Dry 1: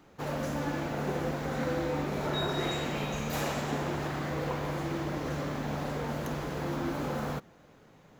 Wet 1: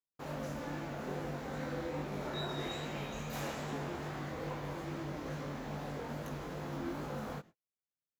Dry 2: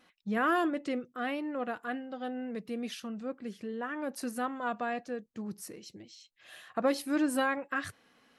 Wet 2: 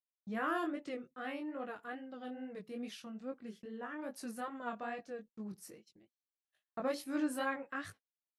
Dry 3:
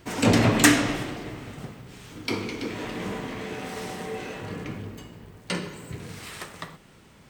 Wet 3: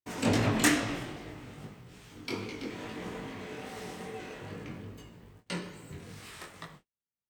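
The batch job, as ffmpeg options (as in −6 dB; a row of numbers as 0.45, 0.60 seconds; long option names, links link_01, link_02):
-af "agate=range=-45dB:threshold=-46dB:ratio=16:detection=peak,flanger=delay=18.5:depth=5:speed=2.4,volume=-4.5dB"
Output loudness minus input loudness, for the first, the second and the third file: −7.5, −7.5, −7.5 LU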